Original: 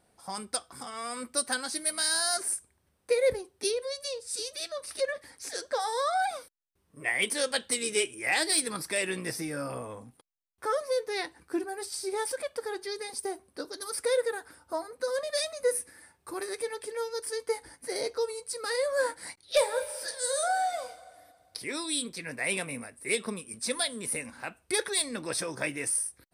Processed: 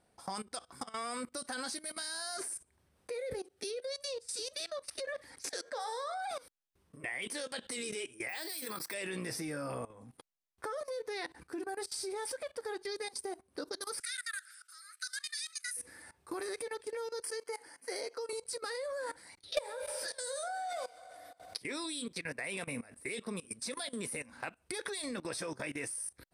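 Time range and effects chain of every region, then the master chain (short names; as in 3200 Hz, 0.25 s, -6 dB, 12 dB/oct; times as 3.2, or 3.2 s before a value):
3.19–3.94 Butterworth band-stop 1000 Hz, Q 4.2 + low shelf 130 Hz -8.5 dB
5.48–6.3 bell 86 Hz -14 dB 1 oct + de-hum 77.77 Hz, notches 31
8.29–8.94 HPF 420 Hz 6 dB/oct + careless resampling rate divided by 2×, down filtered, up zero stuff
14–15.77 steep high-pass 1300 Hz 96 dB/oct + bell 8300 Hz +8 dB 1.7 oct
17.22–18.33 HPF 220 Hz + low shelf 400 Hz -7.5 dB + notch 3700 Hz, Q 5
20.69–21.6 low shelf 160 Hz -10.5 dB + backwards sustainer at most 140 dB/s
whole clip: level quantiser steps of 20 dB; high shelf 12000 Hz -9 dB; compressor 2:1, threshold -49 dBFS; gain +8 dB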